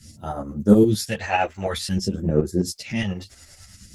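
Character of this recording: phasing stages 2, 0.52 Hz, lowest notch 160–3200 Hz; a quantiser's noise floor 12-bit, dither none; tremolo saw up 9.6 Hz, depth 65%; a shimmering, thickened sound

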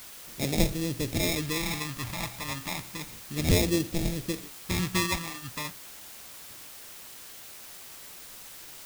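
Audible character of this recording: aliases and images of a low sample rate 1500 Hz, jitter 0%; phasing stages 2, 0.32 Hz, lowest notch 410–1100 Hz; a quantiser's noise floor 8-bit, dither triangular

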